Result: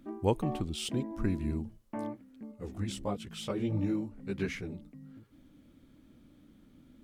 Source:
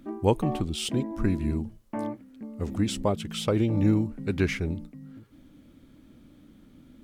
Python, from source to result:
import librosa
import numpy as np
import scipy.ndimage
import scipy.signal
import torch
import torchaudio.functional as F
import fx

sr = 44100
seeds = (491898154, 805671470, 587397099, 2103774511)

y = fx.chorus_voices(x, sr, voices=2, hz=1.2, base_ms=18, depth_ms=3.0, mix_pct=60, at=(2.51, 4.85), fade=0.02)
y = y * 10.0 ** (-5.5 / 20.0)